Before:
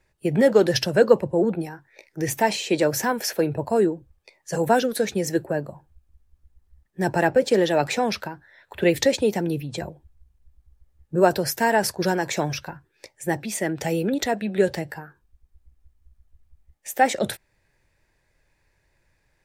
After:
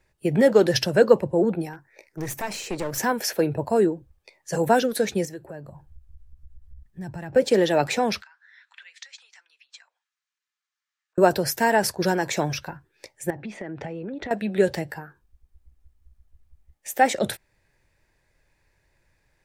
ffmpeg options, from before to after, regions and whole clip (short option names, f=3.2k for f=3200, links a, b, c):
-filter_complex "[0:a]asettb=1/sr,asplit=3[a][b][c];[a]atrim=end=1.734[d];[b]atrim=start=1.73:end=2.98,asetpts=PTS-STARTPTS,afade=t=in:d=0.004:c=qsin,afade=t=out:st=1.246:d=0.004:c=qsin,equalizer=f=3.4k:w=2.2:g=-9,acompressor=threshold=-26dB:ratio=2:attack=3.2:release=140:knee=1:detection=peak,aeval=exprs='clip(val(0),-1,0.0211)':c=same[e];[c]atrim=start=2.976[f];[d][e]acrossfade=d=0.004:c1=hsin:c2=qsin[g];[g][f]acrossfade=d=0.004:c1=qsin:c2=hsin,asettb=1/sr,asplit=3[h][i][j];[h]atrim=end=5.254[k];[i]atrim=start=5.25:end=7.33,asetpts=PTS-STARTPTS,afade=t=in:d=0.004:c=qsin,afade=t=out:st=2.076:d=0.004:c=qsin,asubboost=boost=11.5:cutoff=160,acompressor=threshold=-40dB:ratio=2.5:attack=3.2:release=140:knee=1:detection=peak[l];[j]atrim=start=7.326[m];[k][l]acrossfade=d=0.004:c1=hsin:c2=qsin[n];[n][m]acrossfade=d=0.004:c1=qsin:c2=hsin,asettb=1/sr,asplit=3[o][p][q];[o]atrim=end=8.224[r];[p]atrim=start=8.22:end=11.18,asetpts=PTS-STARTPTS,afade=t=in:d=0.004:c=qsin,afade=t=out:st=2.956:d=0.004:c=qsin,acompressor=threshold=-42dB:ratio=3:attack=3.2:release=140:knee=1:detection=peak,asuperpass=centerf=3100:order=8:qfactor=0.51[s];[q]atrim=start=11.176[t];[r][s]acrossfade=d=0.004:c1=hsin:c2=qsin[u];[u][t]acrossfade=d=0.004:c1=qsin:c2=hsin,asettb=1/sr,asplit=3[v][w][x];[v]atrim=end=13.304[y];[w]atrim=start=13.3:end=14.31,asetpts=PTS-STARTPTS,afade=t=in:d=0.004:c=qsin,afade=t=out:st=1.006:d=0.004:c=qsin,lowpass=2.1k,acompressor=threshold=-29dB:ratio=12:attack=3.2:release=140:knee=1:detection=peak[z];[x]atrim=start=14.306[aa];[y][z]acrossfade=d=0.004:c1=hsin:c2=qsin[ab];[ab][aa]acrossfade=d=0.004:c1=qsin:c2=hsin"